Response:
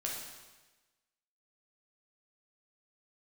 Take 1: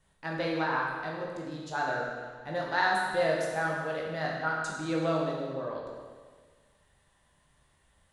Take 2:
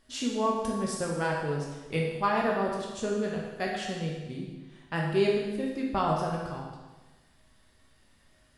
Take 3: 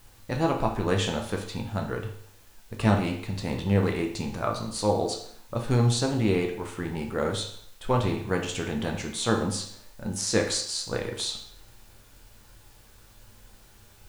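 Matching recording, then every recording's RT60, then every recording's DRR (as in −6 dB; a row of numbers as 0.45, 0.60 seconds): 2; 1.6, 1.2, 0.60 seconds; −2.5, −3.0, 1.5 decibels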